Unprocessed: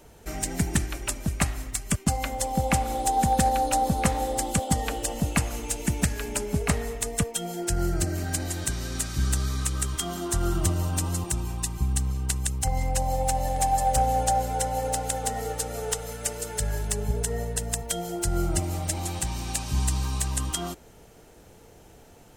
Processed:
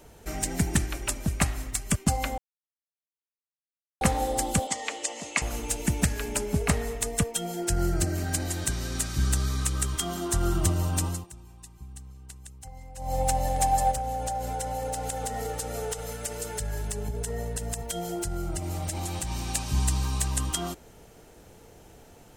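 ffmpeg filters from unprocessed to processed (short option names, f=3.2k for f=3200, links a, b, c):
-filter_complex "[0:a]asettb=1/sr,asplit=3[a][b][c];[a]atrim=end=4.674[d];[b]atrim=start=4.67:end=5.42,asetpts=PTS-STARTPTS,afade=t=in:d=0.004:c=qsin,afade=t=out:st=0.746:d=0.004:c=qsin,highpass=490,equalizer=f=490:t=q:w=4:g=-4,equalizer=f=760:t=q:w=4:g=-5,equalizer=f=1.5k:t=q:w=4:g=-7,equalizer=f=2.1k:t=q:w=4:g=7,equalizer=f=6.8k:t=q:w=4:g=4,lowpass=f=8.1k:w=0.5412,lowpass=f=8.1k:w=1.3066[e];[c]atrim=start=5.416[f];[d][e]acrossfade=d=0.004:c1=hsin:c2=qsin[g];[g][f]acrossfade=d=0.004:c1=qsin:c2=hsin,asettb=1/sr,asplit=3[h][i][j];[h]atrim=end=13.914[k];[i]atrim=start=13.91:end=19.31,asetpts=PTS-STARTPTS,afade=t=in:d=0.004:c=qsin,afade=t=out:st=5.396:d=0.004:c=qsin,acompressor=threshold=-27dB:ratio=6:attack=3.2:release=140:knee=1:detection=peak[l];[j]atrim=start=19.306[m];[k][l]acrossfade=d=0.004:c1=hsin:c2=qsin[n];[n][m]acrossfade=d=0.004:c1=qsin:c2=hsin,asplit=5[o][p][q][r][s];[o]atrim=end=2.38,asetpts=PTS-STARTPTS,afade=t=out:st=2.376:d=0.004:c=hsin[t];[p]atrim=start=2.38:end=4.01,asetpts=PTS-STARTPTS,volume=0[u];[q]atrim=start=4.01:end=11.27,asetpts=PTS-STARTPTS,afade=t=in:d=0.004:c=hsin,afade=t=out:st=7.04:d=0.22:silence=0.125893[v];[r]atrim=start=11.27:end=12.97,asetpts=PTS-STARTPTS,volume=-18dB[w];[s]atrim=start=12.97,asetpts=PTS-STARTPTS,afade=t=in:d=0.22:silence=0.125893[x];[t][u][v][w][x]concat=n=5:v=0:a=1"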